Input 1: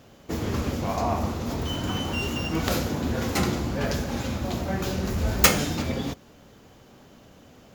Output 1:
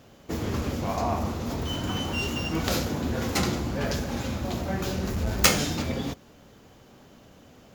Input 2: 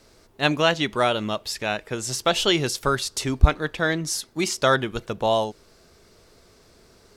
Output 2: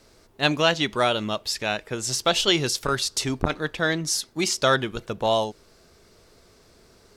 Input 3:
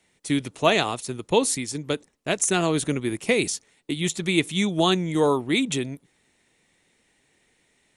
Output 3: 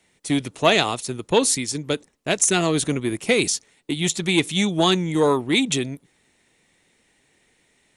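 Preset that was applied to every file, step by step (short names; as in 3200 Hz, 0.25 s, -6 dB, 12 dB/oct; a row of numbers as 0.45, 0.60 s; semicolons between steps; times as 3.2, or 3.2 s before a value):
dynamic EQ 4900 Hz, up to +4 dB, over -36 dBFS, Q 0.83; core saturation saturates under 670 Hz; normalise peaks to -2 dBFS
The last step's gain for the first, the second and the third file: -1.0, -0.5, +2.5 dB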